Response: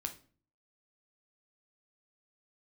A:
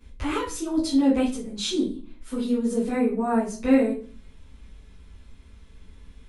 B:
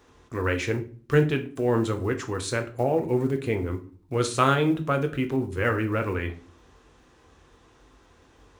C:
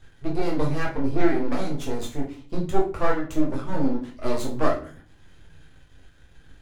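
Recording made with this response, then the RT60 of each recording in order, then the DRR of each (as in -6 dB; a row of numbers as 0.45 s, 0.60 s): B; 0.40 s, 0.40 s, 0.40 s; -11.5 dB, 5.0 dB, -3.0 dB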